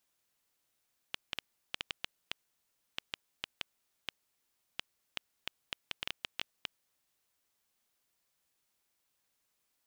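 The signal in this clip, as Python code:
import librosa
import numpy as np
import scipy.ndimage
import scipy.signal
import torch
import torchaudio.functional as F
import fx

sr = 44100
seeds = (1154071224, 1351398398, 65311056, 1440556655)

y = fx.geiger_clicks(sr, seeds[0], length_s=5.98, per_s=4.1, level_db=-16.5)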